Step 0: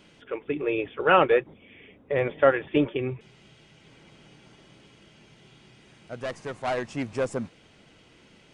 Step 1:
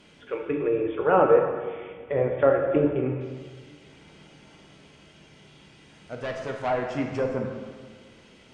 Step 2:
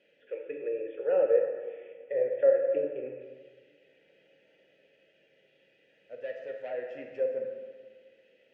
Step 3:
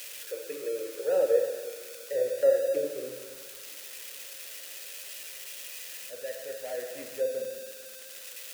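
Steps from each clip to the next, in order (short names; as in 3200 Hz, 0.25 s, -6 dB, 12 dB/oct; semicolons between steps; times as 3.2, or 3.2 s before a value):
treble ducked by the level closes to 1000 Hz, closed at -22 dBFS; plate-style reverb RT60 1.6 s, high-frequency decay 0.85×, DRR 1.5 dB
vowel filter e
switching spikes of -30 dBFS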